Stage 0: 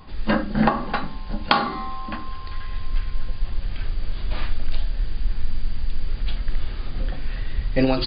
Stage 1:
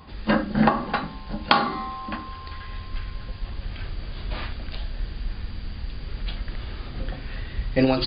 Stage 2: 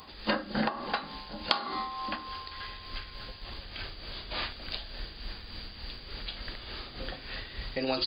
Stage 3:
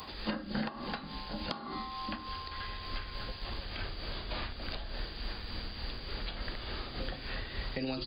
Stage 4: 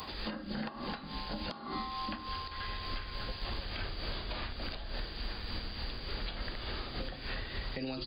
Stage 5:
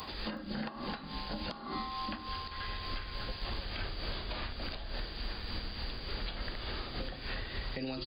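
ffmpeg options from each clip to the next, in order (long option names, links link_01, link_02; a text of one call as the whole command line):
ffmpeg -i in.wav -af "highpass=43" out.wav
ffmpeg -i in.wav -af "bass=frequency=250:gain=-11,treble=frequency=4000:gain=13,acompressor=threshold=-26dB:ratio=3,tremolo=f=3.4:d=0.48" out.wav
ffmpeg -i in.wav -filter_complex "[0:a]acrossover=split=260|1700[link_01][link_02][link_03];[link_01]acompressor=threshold=-39dB:ratio=4[link_04];[link_02]acompressor=threshold=-47dB:ratio=4[link_05];[link_03]acompressor=threshold=-49dB:ratio=4[link_06];[link_04][link_05][link_06]amix=inputs=3:normalize=0,volume=4.5dB" out.wav
ffmpeg -i in.wav -af "alimiter=level_in=5.5dB:limit=-24dB:level=0:latency=1:release=237,volume=-5.5dB,volume=2dB" out.wav
ffmpeg -i in.wav -af "aecho=1:1:370:0.0944" out.wav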